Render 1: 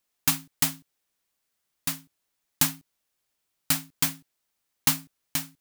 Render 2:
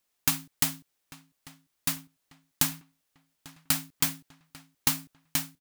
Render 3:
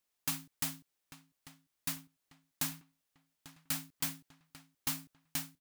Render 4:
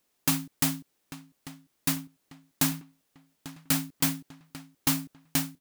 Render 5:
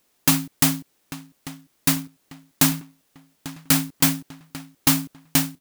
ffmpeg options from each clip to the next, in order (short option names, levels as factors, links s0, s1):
-filter_complex "[0:a]acompressor=threshold=0.0794:ratio=3,asplit=2[s0][s1];[s1]adelay=845,lowpass=f=3600:p=1,volume=0.126,asplit=2[s2][s3];[s3]adelay=845,lowpass=f=3600:p=1,volume=0.46,asplit=2[s4][s5];[s5]adelay=845,lowpass=f=3600:p=1,volume=0.46,asplit=2[s6][s7];[s7]adelay=845,lowpass=f=3600:p=1,volume=0.46[s8];[s0][s2][s4][s6][s8]amix=inputs=5:normalize=0,volume=1.12"
-af "asoftclip=type=tanh:threshold=0.1,volume=0.501"
-af "equalizer=f=280:t=o:w=2.3:g=8,volume=2.66"
-af "acrusher=bits=3:mode=log:mix=0:aa=0.000001,volume=2.37"